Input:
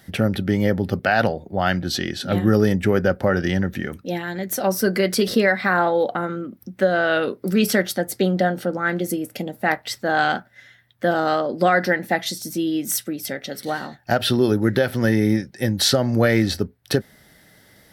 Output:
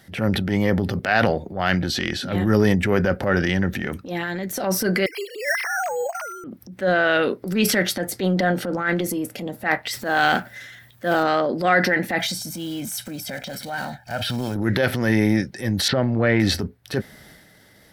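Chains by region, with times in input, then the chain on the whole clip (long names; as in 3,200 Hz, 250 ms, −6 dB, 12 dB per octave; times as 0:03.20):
0:05.06–0:06.44: three sine waves on the formant tracks + high-pass filter 810 Hz + bad sample-rate conversion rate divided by 6×, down filtered, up hold
0:09.91–0:11.23: mu-law and A-law mismatch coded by mu + high-shelf EQ 9,100 Hz +12 dB
0:12.20–0:14.56: one scale factor per block 5 bits + comb filter 1.3 ms, depth 74% + downward compressor 2 to 1, threshold −26 dBFS
0:15.88–0:16.40: mu-law and A-law mismatch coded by A + high-frequency loss of the air 360 metres
whole clip: dynamic equaliser 2,200 Hz, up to +5 dB, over −36 dBFS, Q 1.6; transient designer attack −9 dB, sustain +6 dB; high-shelf EQ 11,000 Hz −4.5 dB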